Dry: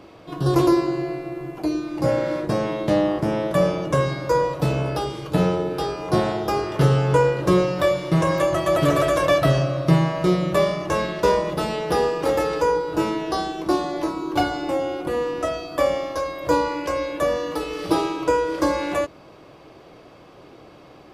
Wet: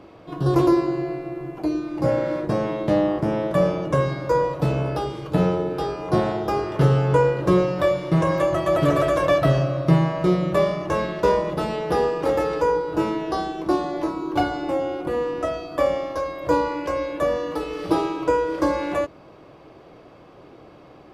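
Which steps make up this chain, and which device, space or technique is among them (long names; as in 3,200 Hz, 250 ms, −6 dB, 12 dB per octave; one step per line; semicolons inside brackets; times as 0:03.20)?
behind a face mask (high-shelf EQ 2,900 Hz −8 dB)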